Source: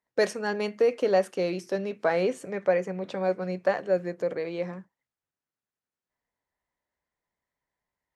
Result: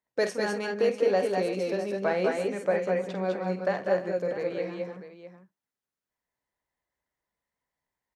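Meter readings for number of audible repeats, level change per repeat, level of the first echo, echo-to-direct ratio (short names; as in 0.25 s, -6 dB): 4, no steady repeat, -10.0 dB, -0.5 dB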